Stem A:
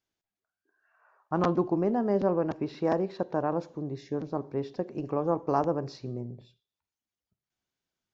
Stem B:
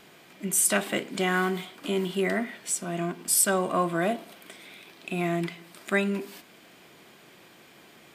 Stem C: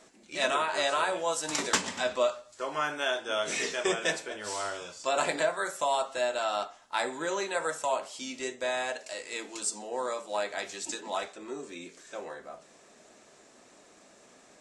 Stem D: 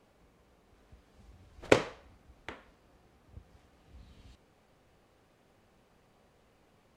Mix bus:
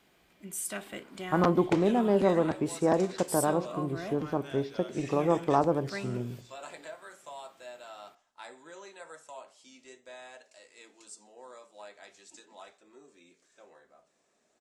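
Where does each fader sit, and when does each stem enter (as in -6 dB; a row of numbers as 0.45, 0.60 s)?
+1.5, -13.0, -16.5, -9.5 dB; 0.00, 0.00, 1.45, 0.00 s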